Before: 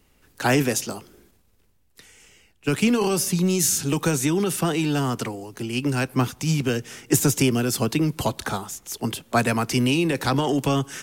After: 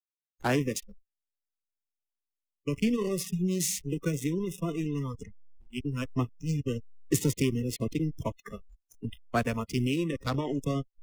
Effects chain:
slack as between gear wheels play −18.5 dBFS
noise reduction from a noise print of the clip's start 29 dB
level −6 dB

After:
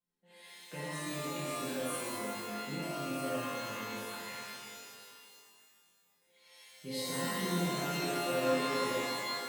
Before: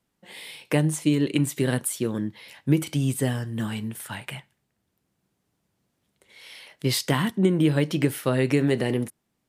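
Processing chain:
resonators tuned to a chord F3 minor, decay 0.55 s
reverb with rising layers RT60 2.2 s, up +12 semitones, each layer −2 dB, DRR −6.5 dB

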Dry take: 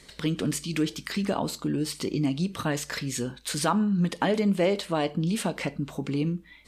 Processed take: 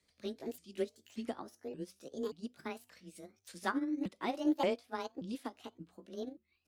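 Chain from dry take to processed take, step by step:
pitch shifter swept by a sawtooth +8 semitones, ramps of 579 ms
frequency shifter +19 Hz
expander for the loud parts 2.5 to 1, over −34 dBFS
level −5 dB

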